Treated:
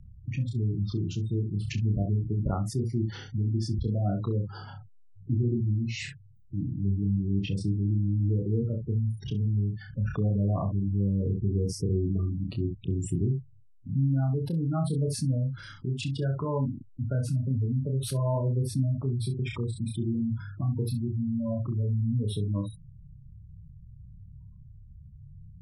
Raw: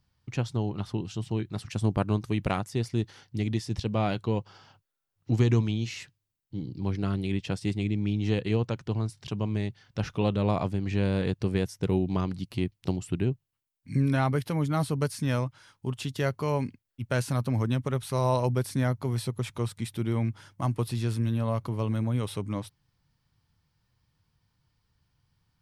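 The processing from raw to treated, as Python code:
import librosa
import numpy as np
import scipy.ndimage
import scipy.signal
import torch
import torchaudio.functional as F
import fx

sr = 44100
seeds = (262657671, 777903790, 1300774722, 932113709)

y = fx.low_shelf(x, sr, hz=110.0, db=10.0)
y = fx.spec_gate(y, sr, threshold_db=-15, keep='strong')
y = fx.rotary_switch(y, sr, hz=6.3, then_hz=0.65, switch_at_s=5.71)
y = fx.dynamic_eq(y, sr, hz=510.0, q=7.4, threshold_db=-52.0, ratio=4.0, max_db=-4)
y = fx.room_early_taps(y, sr, ms=(30, 66), db=(-3.5, -10.0))
y = fx.env_flatten(y, sr, amount_pct=50)
y = y * librosa.db_to_amplitude(-6.5)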